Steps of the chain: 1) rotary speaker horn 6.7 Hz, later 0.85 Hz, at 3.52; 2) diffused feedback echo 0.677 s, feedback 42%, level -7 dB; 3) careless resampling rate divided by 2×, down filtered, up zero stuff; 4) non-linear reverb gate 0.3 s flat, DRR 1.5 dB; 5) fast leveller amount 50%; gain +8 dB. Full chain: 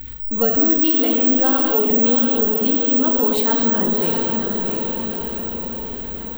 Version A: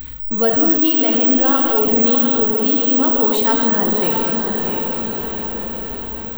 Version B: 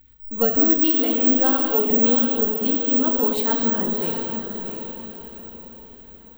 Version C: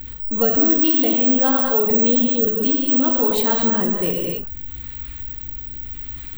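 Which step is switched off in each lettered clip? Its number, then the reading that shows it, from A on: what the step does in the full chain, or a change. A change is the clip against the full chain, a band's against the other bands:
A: 1, 1 kHz band +2.5 dB; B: 5, crest factor change +1.5 dB; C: 2, momentary loudness spread change +6 LU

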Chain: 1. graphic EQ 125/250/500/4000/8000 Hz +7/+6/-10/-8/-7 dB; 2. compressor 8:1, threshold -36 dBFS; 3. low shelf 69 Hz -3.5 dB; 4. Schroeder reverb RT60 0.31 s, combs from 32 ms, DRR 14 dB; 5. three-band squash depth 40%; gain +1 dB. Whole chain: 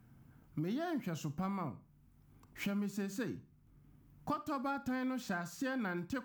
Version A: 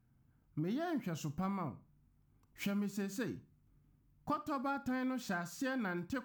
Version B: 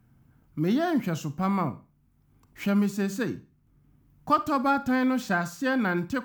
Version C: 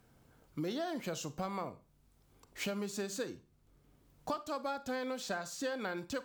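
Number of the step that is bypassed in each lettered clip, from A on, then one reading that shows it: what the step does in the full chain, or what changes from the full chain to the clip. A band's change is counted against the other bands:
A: 5, momentary loudness spread change -2 LU; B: 2, mean gain reduction 10.5 dB; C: 1, crest factor change +3.0 dB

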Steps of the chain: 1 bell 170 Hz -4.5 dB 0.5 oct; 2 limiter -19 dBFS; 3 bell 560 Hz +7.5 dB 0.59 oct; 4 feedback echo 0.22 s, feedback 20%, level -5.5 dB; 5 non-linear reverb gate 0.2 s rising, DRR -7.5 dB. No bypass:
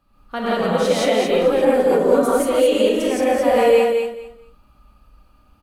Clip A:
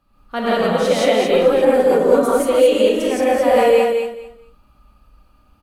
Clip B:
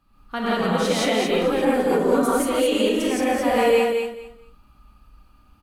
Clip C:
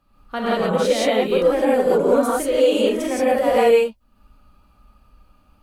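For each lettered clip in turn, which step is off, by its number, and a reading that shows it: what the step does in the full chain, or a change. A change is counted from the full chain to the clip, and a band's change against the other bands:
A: 2, momentary loudness spread change -1 LU; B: 3, 500 Hz band -5.0 dB; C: 4, momentary loudness spread change -3 LU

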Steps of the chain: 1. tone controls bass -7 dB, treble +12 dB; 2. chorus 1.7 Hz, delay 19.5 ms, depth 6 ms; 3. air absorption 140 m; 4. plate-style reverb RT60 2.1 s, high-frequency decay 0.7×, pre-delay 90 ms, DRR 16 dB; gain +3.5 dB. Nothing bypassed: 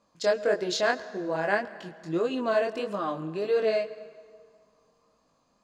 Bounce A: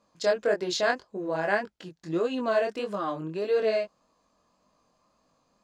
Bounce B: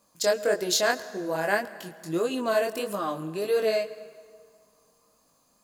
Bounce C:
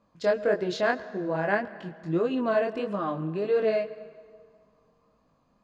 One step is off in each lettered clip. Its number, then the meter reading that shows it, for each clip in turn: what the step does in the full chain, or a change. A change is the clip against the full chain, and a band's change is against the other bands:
4, momentary loudness spread change -5 LU; 3, 4 kHz band +4.0 dB; 1, 4 kHz band -6.0 dB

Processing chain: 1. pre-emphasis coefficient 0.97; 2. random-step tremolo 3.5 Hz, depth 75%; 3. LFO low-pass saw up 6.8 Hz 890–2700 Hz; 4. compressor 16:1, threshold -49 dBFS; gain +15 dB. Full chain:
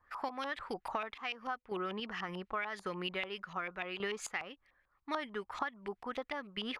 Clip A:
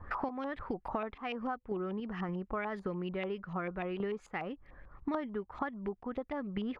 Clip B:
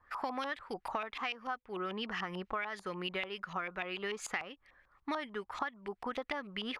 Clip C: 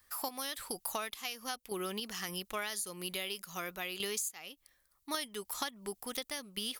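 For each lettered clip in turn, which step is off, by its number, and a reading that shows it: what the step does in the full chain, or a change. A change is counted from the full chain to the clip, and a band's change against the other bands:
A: 1, 4 kHz band -13.5 dB; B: 2, crest factor change +1.5 dB; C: 3, 8 kHz band +15.0 dB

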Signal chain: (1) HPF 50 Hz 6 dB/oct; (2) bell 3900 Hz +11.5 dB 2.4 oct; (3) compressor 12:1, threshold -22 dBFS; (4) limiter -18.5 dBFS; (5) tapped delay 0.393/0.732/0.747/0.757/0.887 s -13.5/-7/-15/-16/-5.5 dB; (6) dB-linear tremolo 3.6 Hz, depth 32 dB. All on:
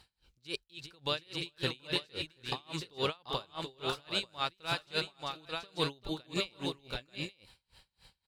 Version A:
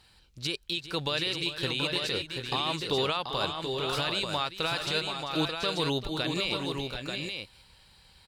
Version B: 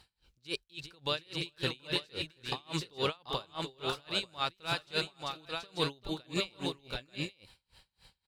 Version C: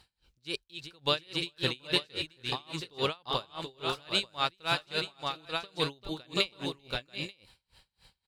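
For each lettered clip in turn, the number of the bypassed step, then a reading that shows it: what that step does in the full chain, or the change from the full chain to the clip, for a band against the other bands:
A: 6, momentary loudness spread change -2 LU; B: 3, mean gain reduction 5.0 dB; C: 4, mean gain reduction 1.5 dB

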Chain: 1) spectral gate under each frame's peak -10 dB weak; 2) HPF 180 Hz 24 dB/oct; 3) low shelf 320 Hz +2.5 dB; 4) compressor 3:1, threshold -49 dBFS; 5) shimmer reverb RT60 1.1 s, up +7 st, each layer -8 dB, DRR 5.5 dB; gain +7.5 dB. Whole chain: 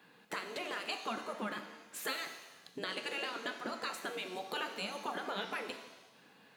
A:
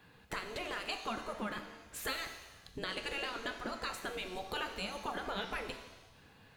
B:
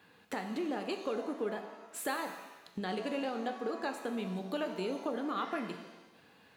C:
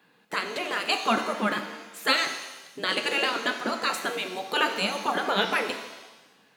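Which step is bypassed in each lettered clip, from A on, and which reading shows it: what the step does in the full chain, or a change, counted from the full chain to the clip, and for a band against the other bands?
2, 125 Hz band +5.0 dB; 1, crest factor change -2.0 dB; 4, mean gain reduction 11.5 dB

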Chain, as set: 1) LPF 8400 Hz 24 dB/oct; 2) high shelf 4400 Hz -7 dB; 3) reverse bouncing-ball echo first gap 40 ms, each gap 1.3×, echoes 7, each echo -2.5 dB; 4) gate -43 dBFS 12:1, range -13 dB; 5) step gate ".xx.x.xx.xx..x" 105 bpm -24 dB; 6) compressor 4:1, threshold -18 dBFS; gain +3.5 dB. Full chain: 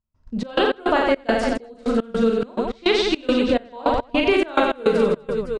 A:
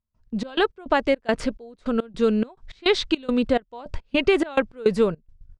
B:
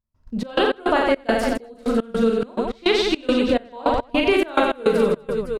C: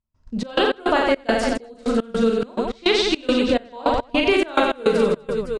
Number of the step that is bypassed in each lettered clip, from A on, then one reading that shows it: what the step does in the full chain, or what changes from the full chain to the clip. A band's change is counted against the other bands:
3, momentary loudness spread change +4 LU; 1, 8 kHz band +1.5 dB; 2, 8 kHz band +4.5 dB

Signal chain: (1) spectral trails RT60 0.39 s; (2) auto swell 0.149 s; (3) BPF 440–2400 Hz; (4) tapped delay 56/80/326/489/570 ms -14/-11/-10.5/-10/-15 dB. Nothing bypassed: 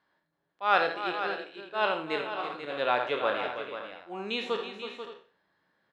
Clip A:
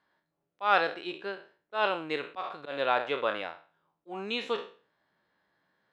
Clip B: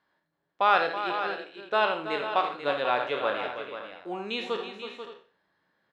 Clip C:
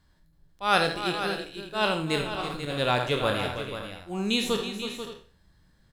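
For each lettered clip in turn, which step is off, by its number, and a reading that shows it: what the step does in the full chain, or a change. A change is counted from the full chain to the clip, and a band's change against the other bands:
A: 4, echo-to-direct -4.5 dB to none; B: 2, 1 kHz band +2.0 dB; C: 3, 125 Hz band +16.0 dB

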